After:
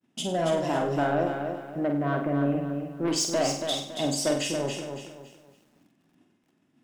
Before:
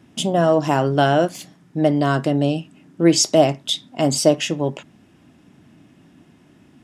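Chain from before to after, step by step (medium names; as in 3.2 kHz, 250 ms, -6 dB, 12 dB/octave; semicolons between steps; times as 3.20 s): high-pass 150 Hz 12 dB/octave; expander -44 dBFS; 0.74–3.08 s: steep low-pass 2.4 kHz 48 dB/octave; saturation -12 dBFS, distortion -13 dB; flutter echo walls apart 8.4 m, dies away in 0.51 s; bit-crushed delay 279 ms, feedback 35%, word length 9-bit, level -6 dB; trim -8 dB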